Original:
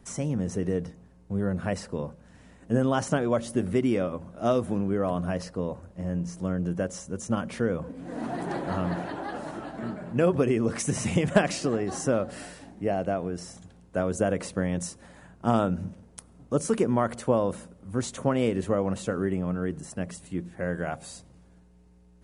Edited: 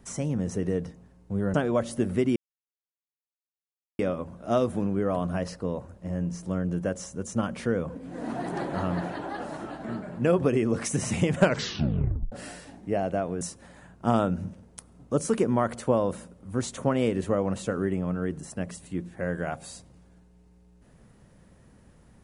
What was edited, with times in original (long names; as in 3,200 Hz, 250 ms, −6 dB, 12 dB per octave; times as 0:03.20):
0:01.54–0:03.11: remove
0:03.93: splice in silence 1.63 s
0:11.32: tape stop 0.94 s
0:13.35–0:14.81: remove